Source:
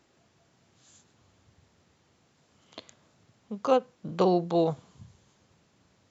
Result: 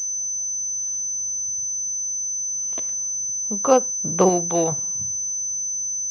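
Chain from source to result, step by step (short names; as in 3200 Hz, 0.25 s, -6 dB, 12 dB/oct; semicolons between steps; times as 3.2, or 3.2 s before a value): 4.29–4.72 tilt shelf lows -5.5 dB, about 1300 Hz; pulse-width modulation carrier 6100 Hz; gain +7 dB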